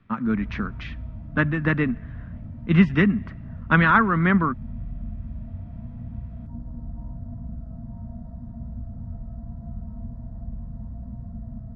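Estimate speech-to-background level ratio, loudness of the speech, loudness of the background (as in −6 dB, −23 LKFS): 16.0 dB, −21.5 LKFS, −37.5 LKFS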